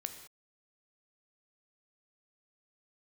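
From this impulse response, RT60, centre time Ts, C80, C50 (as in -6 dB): not exponential, 17 ms, 10.0 dB, 8.5 dB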